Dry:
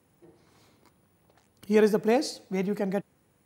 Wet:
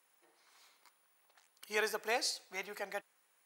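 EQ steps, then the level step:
high-pass filter 1,100 Hz 12 dB per octave
0.0 dB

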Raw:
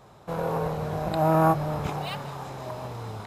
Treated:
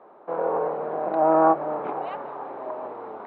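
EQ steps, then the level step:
high-pass filter 300 Hz 24 dB per octave
low-pass filter 1,300 Hz 12 dB per octave
high-frequency loss of the air 250 metres
+5.5 dB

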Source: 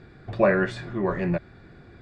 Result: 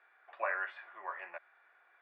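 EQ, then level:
high-pass filter 840 Hz 24 dB per octave
high-frequency loss of the air 300 metres
flat-topped bell 5,100 Hz −11 dB 1.1 octaves
−5.5 dB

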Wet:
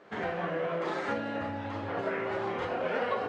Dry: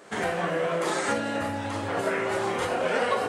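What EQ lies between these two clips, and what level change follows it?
high-frequency loss of the air 220 metres
−4.5 dB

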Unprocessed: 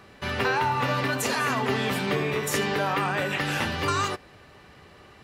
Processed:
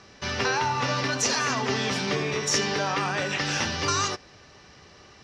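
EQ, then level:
low-pass with resonance 5,700 Hz, resonance Q 5.9
−1.5 dB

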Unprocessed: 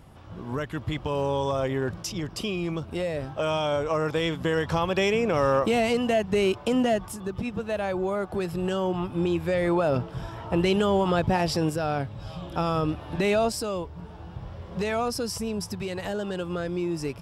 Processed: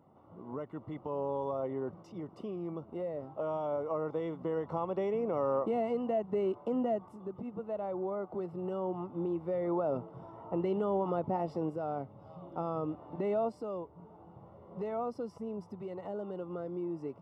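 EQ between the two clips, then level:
Savitzky-Golay smoothing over 65 samples
high-pass filter 200 Hz 12 dB per octave
−7.5 dB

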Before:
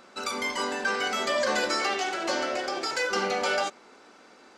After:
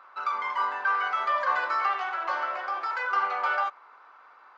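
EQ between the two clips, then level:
high-pass with resonance 1,100 Hz, resonance Q 3.5
head-to-tape spacing loss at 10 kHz 42 dB
+2.0 dB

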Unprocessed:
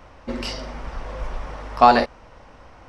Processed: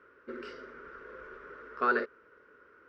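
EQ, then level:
pair of resonant band-passes 770 Hz, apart 1.8 octaves
0.0 dB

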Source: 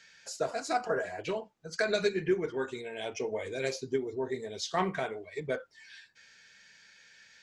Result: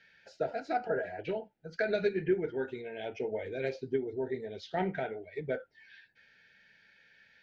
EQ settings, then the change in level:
Butterworth band-reject 1,100 Hz, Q 2.4
high-frequency loss of the air 280 metres
high-shelf EQ 7,000 Hz −6.5 dB
0.0 dB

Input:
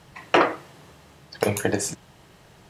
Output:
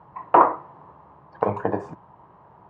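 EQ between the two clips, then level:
high-pass filter 65 Hz
low-pass with resonance 1,000 Hz, resonance Q 5.5
−3.0 dB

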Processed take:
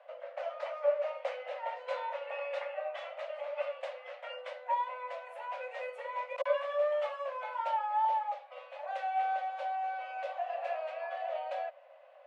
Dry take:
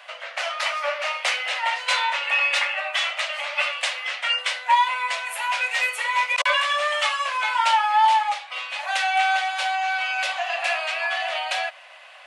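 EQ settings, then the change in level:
resonant band-pass 540 Hz, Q 5.9
+3.5 dB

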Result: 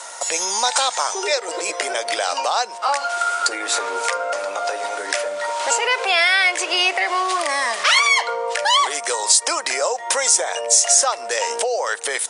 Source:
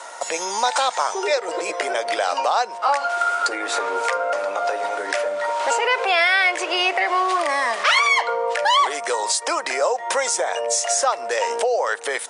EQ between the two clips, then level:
high-shelf EQ 3,400 Hz +12 dB
−2.0 dB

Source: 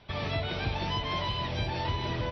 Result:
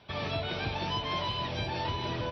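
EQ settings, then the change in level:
high-pass filter 120 Hz 6 dB per octave
notch filter 2,000 Hz, Q 16
0.0 dB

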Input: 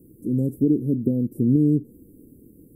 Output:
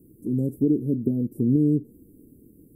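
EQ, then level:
notch filter 510 Hz, Q 13
dynamic equaliser 520 Hz, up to +3 dB, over −33 dBFS, Q 1.4
−2.5 dB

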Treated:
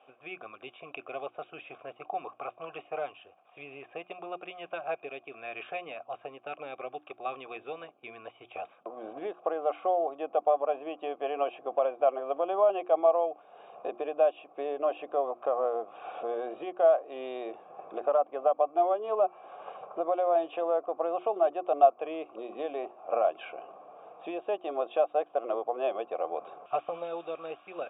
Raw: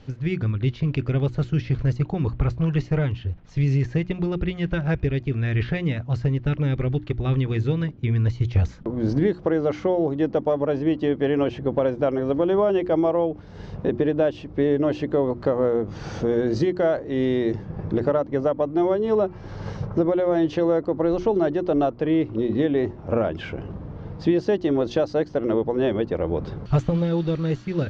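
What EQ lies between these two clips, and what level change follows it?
formant filter a
high-pass filter 470 Hz 12 dB per octave
linear-phase brick-wall low-pass 3,800 Hz
+7.5 dB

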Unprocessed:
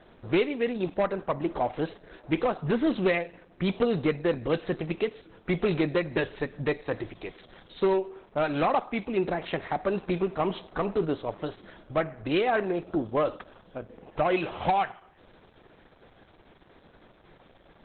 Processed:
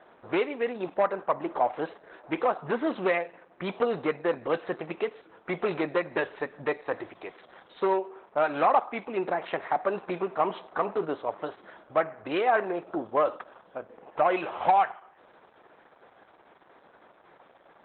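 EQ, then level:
resonant band-pass 1,000 Hz, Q 0.93
+4.5 dB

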